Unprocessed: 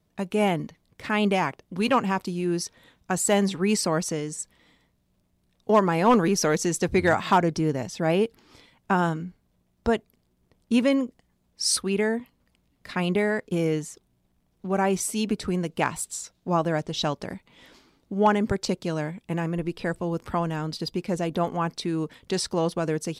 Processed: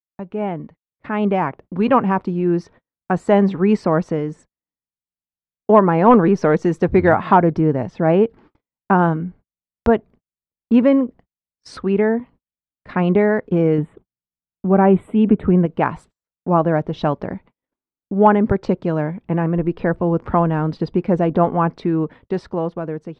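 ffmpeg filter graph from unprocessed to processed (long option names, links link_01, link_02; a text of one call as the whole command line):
ffmpeg -i in.wav -filter_complex "[0:a]asettb=1/sr,asplit=3[link_01][link_02][link_03];[link_01]atrim=end=6.644[link_04];[link_02]atrim=start=6.64:end=7.18,asetpts=PTS-STARTPTS,afade=type=in:duration=0.004:curve=qsin,afade=type=out:start_time=0.536:duration=0.004:curve=qsin,highshelf=frequency=11000:gain=12,deesser=0.35[link_05];[link_03]atrim=start=7.176[link_06];[link_04][link_05]acrossfade=duration=0.004:curve1=hsin:curve2=qsin[link_07];[link_07][link_06]acrossfade=duration=0.004:curve1=qsin:curve2=hsin,asettb=1/sr,asplit=3[link_08][link_09][link_10];[link_08]atrim=end=13.784[link_11];[link_09]atrim=start=13.78:end=15.66,asetpts=PTS-STARTPTS,afade=type=in:duration=0.004:curve=qsin,afade=type=out:start_time=1.876:duration=0.004:curve=qsin,asuperstop=centerf=5500:order=8:qfactor=1.2,equalizer=frequency=150:width=0.35:gain=5.5[link_12];[link_10]atrim=start=15.656[link_13];[link_11][link_12]acrossfade=duration=0.004:curve1=hsin:curve2=qsin[link_14];[link_14][link_13]acrossfade=duration=0.004:curve1=qsin:curve2=hsin,dynaudnorm=framelen=280:gausssize=9:maxgain=15dB,lowpass=1400,agate=range=-45dB:threshold=-40dB:ratio=16:detection=peak,volume=-1dB" out.wav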